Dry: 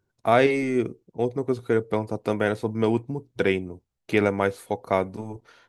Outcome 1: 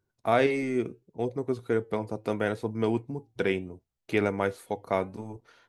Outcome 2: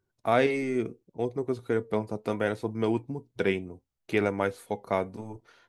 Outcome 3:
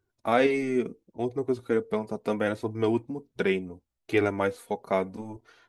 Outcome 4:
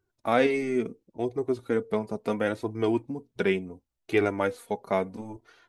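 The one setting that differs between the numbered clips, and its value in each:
flange, regen: -89, +82, -17, +18%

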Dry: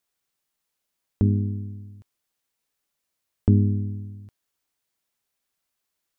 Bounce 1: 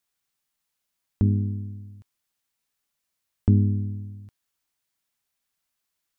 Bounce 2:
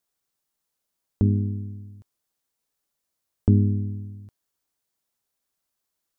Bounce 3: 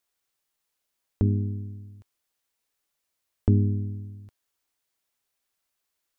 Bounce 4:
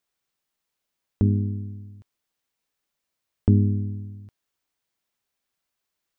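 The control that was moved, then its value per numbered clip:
bell, frequency: 450, 2400, 170, 12000 Hz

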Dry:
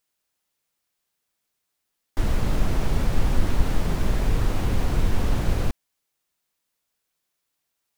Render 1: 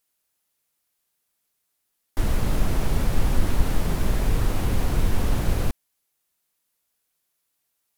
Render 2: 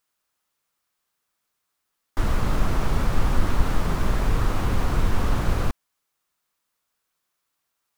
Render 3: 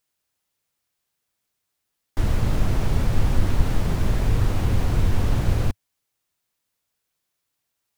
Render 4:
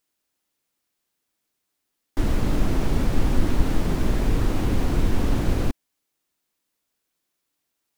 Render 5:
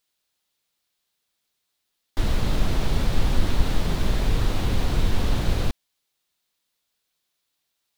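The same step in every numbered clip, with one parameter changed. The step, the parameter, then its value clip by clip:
bell, frequency: 12000, 1200, 100, 290, 3800 Hz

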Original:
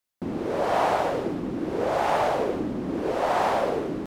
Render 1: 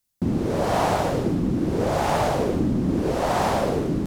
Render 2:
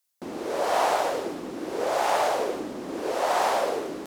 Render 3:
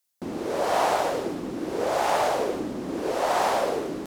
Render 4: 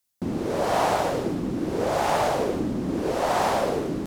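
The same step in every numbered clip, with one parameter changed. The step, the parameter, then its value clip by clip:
tone controls, bass: +14, -15, -6, +5 dB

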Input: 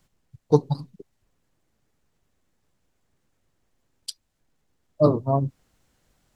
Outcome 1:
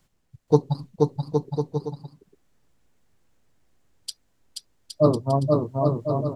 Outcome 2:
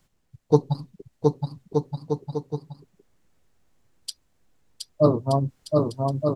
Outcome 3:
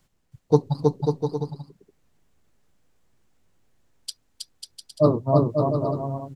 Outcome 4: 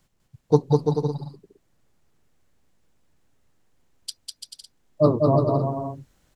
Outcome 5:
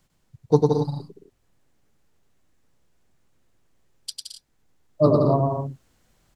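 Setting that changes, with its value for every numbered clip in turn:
bouncing-ball echo, first gap: 0.48, 0.72, 0.32, 0.2, 0.1 s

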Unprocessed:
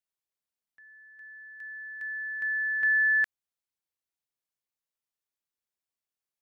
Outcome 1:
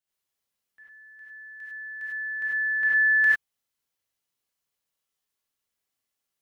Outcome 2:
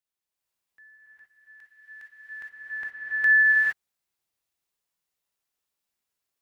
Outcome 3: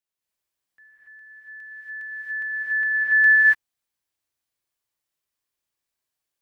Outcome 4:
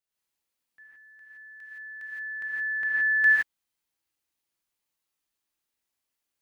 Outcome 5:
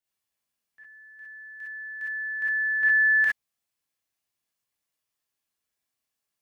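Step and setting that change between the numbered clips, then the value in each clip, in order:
non-linear reverb, gate: 120, 490, 310, 190, 80 ms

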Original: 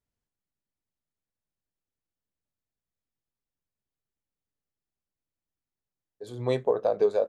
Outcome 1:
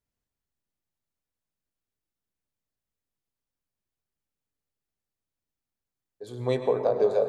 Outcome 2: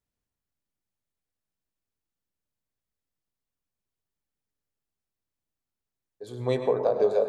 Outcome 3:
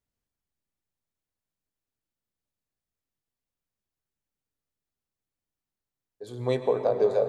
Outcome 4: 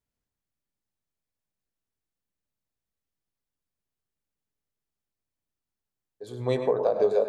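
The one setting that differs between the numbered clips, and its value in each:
plate-style reverb, RT60: 2.4, 1.2, 5.3, 0.54 s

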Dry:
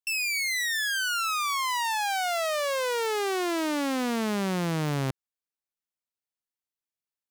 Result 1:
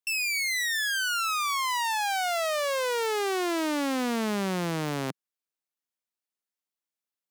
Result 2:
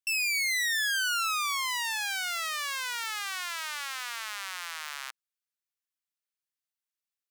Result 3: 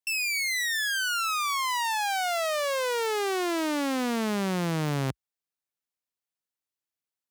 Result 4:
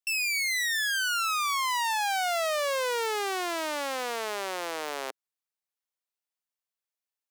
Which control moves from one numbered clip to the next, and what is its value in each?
HPF, cutoff: 170, 1200, 56, 440 Hz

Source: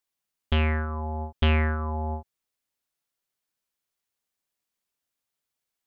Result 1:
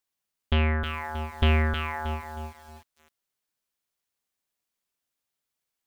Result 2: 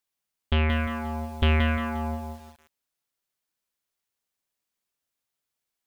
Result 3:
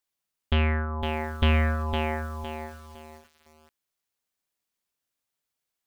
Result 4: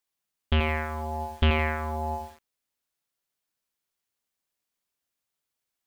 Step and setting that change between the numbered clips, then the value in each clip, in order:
lo-fi delay, time: 315, 176, 509, 83 ms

